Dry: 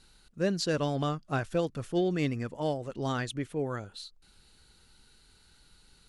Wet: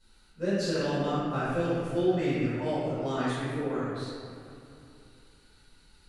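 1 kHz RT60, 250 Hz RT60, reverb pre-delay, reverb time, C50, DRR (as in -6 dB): 2.7 s, 3.0 s, 4 ms, 2.7 s, -4.5 dB, -14.0 dB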